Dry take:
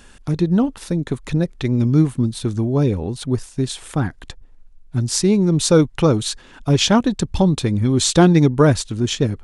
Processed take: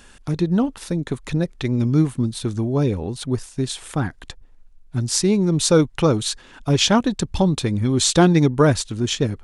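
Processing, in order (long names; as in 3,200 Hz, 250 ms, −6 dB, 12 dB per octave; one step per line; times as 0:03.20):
low-shelf EQ 490 Hz −3 dB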